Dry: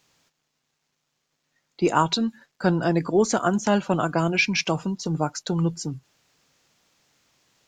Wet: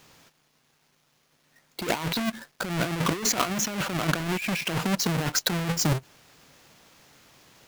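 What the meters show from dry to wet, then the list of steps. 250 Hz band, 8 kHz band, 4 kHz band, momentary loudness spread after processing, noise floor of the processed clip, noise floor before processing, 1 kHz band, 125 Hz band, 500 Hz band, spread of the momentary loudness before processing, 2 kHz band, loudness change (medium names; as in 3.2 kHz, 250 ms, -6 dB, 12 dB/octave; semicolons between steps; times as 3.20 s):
-5.0 dB, +5.0 dB, +1.5 dB, 7 LU, -68 dBFS, -77 dBFS, -5.5 dB, -2.0 dB, -8.0 dB, 7 LU, -2.0 dB, -3.0 dB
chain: square wave that keeps the level; dynamic bell 2.3 kHz, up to +5 dB, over -32 dBFS, Q 0.8; compressor with a negative ratio -26 dBFS, ratio -1; trim -1.5 dB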